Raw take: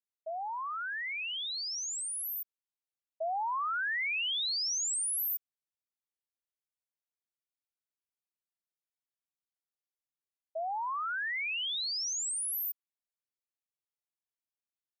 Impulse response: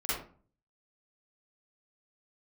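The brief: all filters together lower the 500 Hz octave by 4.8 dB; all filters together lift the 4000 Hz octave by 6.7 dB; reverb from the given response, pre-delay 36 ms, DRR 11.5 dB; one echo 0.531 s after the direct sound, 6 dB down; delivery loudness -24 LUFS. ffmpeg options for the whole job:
-filter_complex "[0:a]equalizer=f=500:t=o:g=-8.5,equalizer=f=4k:t=o:g=8.5,aecho=1:1:531:0.501,asplit=2[a][b];[1:a]atrim=start_sample=2205,adelay=36[c];[b][c]afir=irnorm=-1:irlink=0,volume=-18.5dB[d];[a][d]amix=inputs=2:normalize=0,volume=4dB"

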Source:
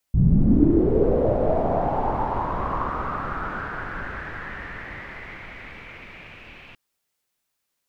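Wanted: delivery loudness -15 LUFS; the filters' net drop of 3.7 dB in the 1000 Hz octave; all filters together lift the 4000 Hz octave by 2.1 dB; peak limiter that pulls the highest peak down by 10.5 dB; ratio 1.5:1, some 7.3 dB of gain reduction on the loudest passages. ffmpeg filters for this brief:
-af "equalizer=f=1k:t=o:g=-5,equalizer=f=4k:t=o:g=3.5,acompressor=threshold=-33dB:ratio=1.5,volume=19dB,alimiter=limit=-3.5dB:level=0:latency=1"

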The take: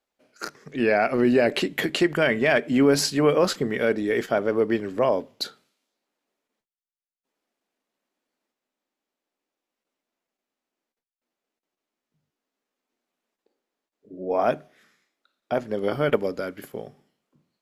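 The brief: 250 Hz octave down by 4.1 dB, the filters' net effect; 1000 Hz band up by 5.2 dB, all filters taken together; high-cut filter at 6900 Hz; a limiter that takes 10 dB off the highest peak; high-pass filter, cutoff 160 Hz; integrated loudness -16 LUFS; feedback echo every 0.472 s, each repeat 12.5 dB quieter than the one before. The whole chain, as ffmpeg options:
-af "highpass=160,lowpass=6.9k,equalizer=f=250:t=o:g=-5,equalizer=f=1k:t=o:g=8,alimiter=limit=-15dB:level=0:latency=1,aecho=1:1:472|944|1416:0.237|0.0569|0.0137,volume=11dB"

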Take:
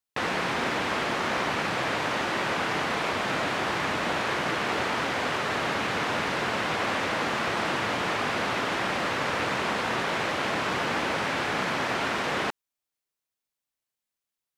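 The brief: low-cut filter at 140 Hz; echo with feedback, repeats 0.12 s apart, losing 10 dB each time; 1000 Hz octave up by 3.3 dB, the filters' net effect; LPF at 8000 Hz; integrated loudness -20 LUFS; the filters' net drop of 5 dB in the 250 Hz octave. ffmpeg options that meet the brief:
-af "highpass=140,lowpass=8k,equalizer=f=250:t=o:g=-6.5,equalizer=f=1k:t=o:g=4.5,aecho=1:1:120|240|360|480:0.316|0.101|0.0324|0.0104,volume=5.5dB"

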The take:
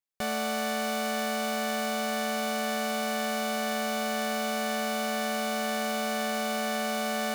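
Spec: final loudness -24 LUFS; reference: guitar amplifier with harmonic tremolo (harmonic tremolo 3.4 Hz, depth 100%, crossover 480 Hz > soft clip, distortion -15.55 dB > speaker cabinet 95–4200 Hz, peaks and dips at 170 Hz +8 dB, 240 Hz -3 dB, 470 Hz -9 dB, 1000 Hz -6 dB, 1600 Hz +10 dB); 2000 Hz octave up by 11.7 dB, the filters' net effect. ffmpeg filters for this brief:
-filter_complex "[0:a]equalizer=f=2k:t=o:g=9,acrossover=split=480[a][b];[a]aeval=exprs='val(0)*(1-1/2+1/2*cos(2*PI*3.4*n/s))':c=same[c];[b]aeval=exprs='val(0)*(1-1/2-1/2*cos(2*PI*3.4*n/s))':c=same[d];[c][d]amix=inputs=2:normalize=0,asoftclip=threshold=-25dB,highpass=95,equalizer=f=170:t=q:w=4:g=8,equalizer=f=240:t=q:w=4:g=-3,equalizer=f=470:t=q:w=4:g=-9,equalizer=f=1k:t=q:w=4:g=-6,equalizer=f=1.6k:t=q:w=4:g=10,lowpass=f=4.2k:w=0.5412,lowpass=f=4.2k:w=1.3066,volume=7dB"

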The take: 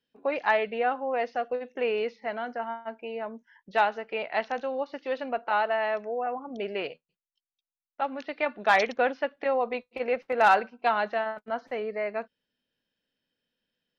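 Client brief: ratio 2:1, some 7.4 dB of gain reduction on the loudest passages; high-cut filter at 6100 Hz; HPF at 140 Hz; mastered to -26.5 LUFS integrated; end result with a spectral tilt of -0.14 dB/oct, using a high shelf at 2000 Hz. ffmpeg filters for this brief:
-af "highpass=140,lowpass=6.1k,highshelf=f=2k:g=6,acompressor=threshold=-28dB:ratio=2,volume=5dB"

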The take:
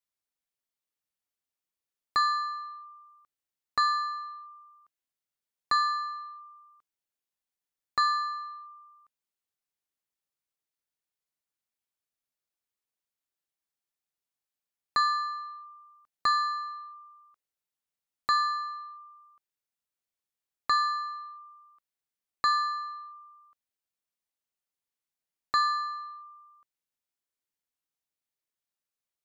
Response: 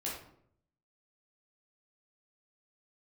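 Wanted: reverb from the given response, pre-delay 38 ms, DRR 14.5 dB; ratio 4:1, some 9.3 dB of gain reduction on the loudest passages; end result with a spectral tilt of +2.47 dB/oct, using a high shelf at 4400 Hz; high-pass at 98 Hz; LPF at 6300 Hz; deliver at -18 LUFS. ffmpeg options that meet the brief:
-filter_complex "[0:a]highpass=98,lowpass=6.3k,highshelf=f=4.4k:g=-8.5,acompressor=threshold=-34dB:ratio=4,asplit=2[a][b];[1:a]atrim=start_sample=2205,adelay=38[c];[b][c]afir=irnorm=-1:irlink=0,volume=-16.5dB[d];[a][d]amix=inputs=2:normalize=0,volume=18.5dB"

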